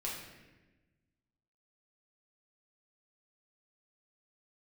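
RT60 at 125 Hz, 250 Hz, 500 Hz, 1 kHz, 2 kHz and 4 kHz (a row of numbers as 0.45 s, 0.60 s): 1.8 s, 1.6 s, 1.3 s, 1.0 s, 1.2 s, 0.90 s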